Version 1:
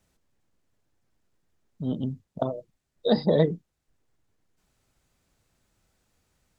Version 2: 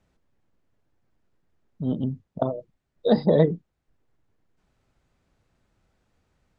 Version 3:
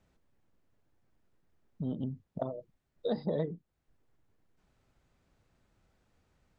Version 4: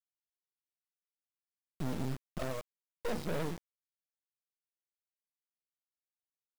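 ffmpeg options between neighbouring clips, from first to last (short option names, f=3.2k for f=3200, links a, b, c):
-af "aemphasis=mode=reproduction:type=75fm,volume=2dB"
-af "acompressor=threshold=-33dB:ratio=2.5,volume=-2dB"
-filter_complex "[0:a]acrossover=split=500[a][b];[a]aeval=exprs='val(0)*(1-0.5/2+0.5/2*cos(2*PI*7.5*n/s))':c=same[c];[b]aeval=exprs='val(0)*(1-0.5/2-0.5/2*cos(2*PI*7.5*n/s))':c=same[d];[c][d]amix=inputs=2:normalize=0,asoftclip=type=tanh:threshold=-38.5dB,acrusher=bits=6:dc=4:mix=0:aa=0.000001,volume=11dB"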